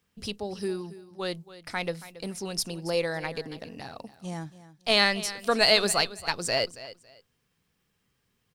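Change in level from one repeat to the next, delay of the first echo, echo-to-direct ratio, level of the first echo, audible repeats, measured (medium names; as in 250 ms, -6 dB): -12.5 dB, 277 ms, -16.0 dB, -16.0 dB, 2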